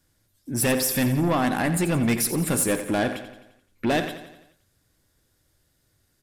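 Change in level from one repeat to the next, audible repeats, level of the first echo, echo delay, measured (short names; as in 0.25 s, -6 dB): -5.5 dB, 5, -11.5 dB, 87 ms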